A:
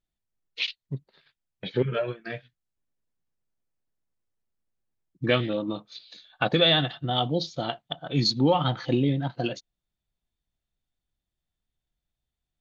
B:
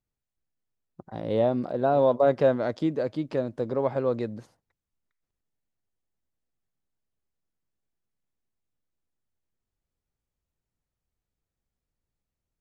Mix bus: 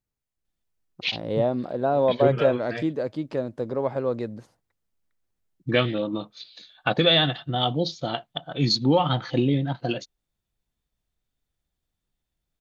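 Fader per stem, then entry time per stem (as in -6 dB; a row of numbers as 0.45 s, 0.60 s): +1.5 dB, 0.0 dB; 0.45 s, 0.00 s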